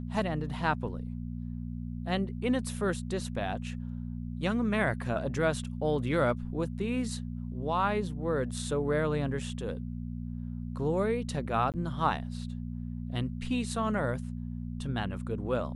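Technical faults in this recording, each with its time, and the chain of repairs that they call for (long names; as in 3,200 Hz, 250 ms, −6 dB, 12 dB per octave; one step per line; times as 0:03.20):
mains hum 60 Hz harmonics 4 −37 dBFS
0:11.72–0:11.74: drop-out 18 ms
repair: hum removal 60 Hz, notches 4
repair the gap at 0:11.72, 18 ms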